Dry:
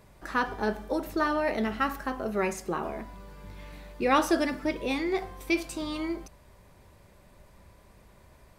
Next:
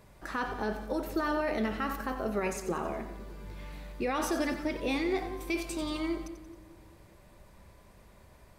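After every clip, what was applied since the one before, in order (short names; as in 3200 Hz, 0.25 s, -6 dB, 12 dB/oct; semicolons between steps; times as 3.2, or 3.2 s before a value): limiter -21 dBFS, peak gain reduction 11 dB; split-band echo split 490 Hz, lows 0.204 s, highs 90 ms, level -11 dB; gain -1 dB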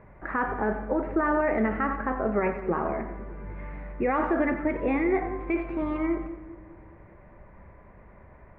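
Chebyshev low-pass 2100 Hz, order 4; gain +6.5 dB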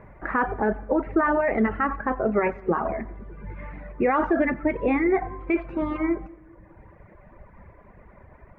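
reverb removal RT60 1.3 s; gain +4.5 dB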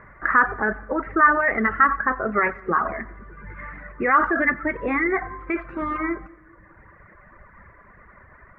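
band shelf 1500 Hz +13 dB 1.1 oct; gain -3 dB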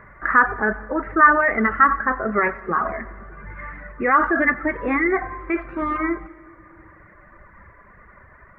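harmonic-percussive split harmonic +5 dB; on a send at -21.5 dB: reverb RT60 3.3 s, pre-delay 85 ms; on the sum: gain -2 dB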